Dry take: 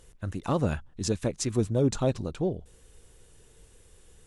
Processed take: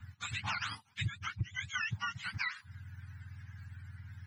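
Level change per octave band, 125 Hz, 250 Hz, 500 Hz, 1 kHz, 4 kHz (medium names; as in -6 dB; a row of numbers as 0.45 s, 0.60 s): -10.5 dB, -23.5 dB, under -35 dB, -4.0 dB, +0.5 dB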